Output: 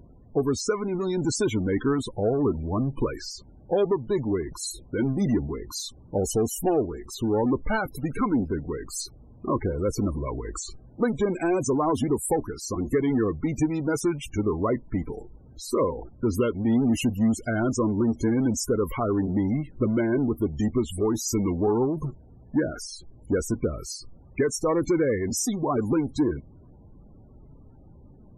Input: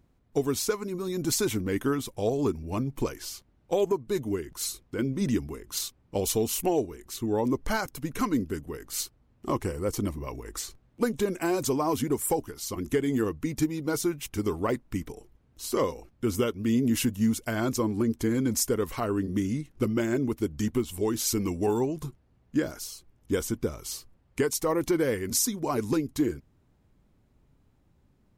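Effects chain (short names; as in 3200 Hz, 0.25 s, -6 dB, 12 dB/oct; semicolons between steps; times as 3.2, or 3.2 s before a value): power-law curve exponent 0.7; loudest bins only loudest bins 32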